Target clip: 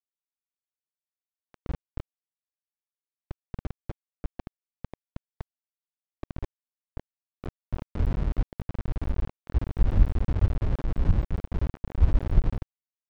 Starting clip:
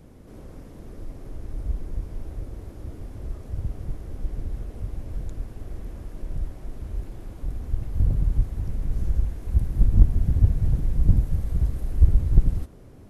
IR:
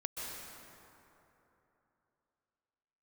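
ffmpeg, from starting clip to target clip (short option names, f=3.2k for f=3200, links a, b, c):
-af "aeval=exprs='val(0)*gte(abs(val(0)),0.0841)':c=same,adynamicsmooth=sensitivity=1.5:basefreq=920,volume=-4.5dB"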